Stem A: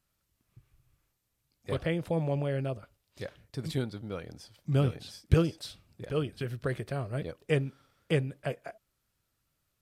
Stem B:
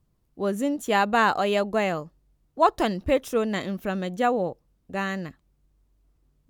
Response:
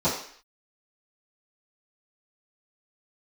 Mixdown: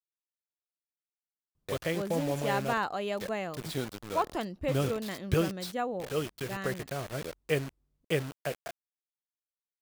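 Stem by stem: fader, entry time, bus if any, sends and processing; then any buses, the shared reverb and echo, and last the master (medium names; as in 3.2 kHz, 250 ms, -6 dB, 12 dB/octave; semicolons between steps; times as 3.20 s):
+1.0 dB, 0.00 s, no send, bass shelf 190 Hz -10 dB; bit crusher 7-bit
-10.0 dB, 1.55 s, no send, none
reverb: none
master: none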